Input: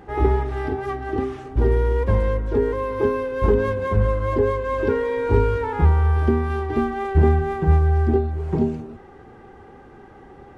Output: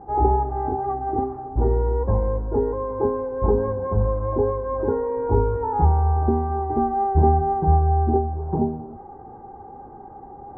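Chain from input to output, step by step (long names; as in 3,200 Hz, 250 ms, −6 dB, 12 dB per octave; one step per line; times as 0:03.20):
low-pass filter 1,100 Hz 24 dB per octave
parametric band 810 Hz +11.5 dB 0.28 octaves
reversed playback
upward compression, threshold −33 dBFS
reversed playback
level −2 dB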